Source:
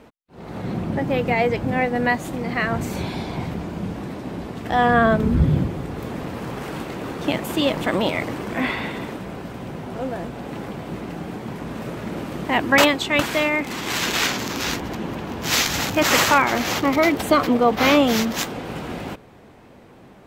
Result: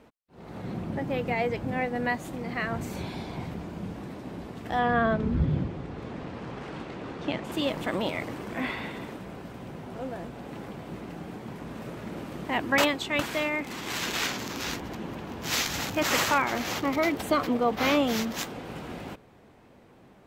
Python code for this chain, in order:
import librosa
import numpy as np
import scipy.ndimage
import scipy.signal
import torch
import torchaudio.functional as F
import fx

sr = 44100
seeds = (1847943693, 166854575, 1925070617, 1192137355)

y = fx.lowpass(x, sr, hz=5200.0, slope=12, at=(4.79, 7.52))
y = y * 10.0 ** (-8.0 / 20.0)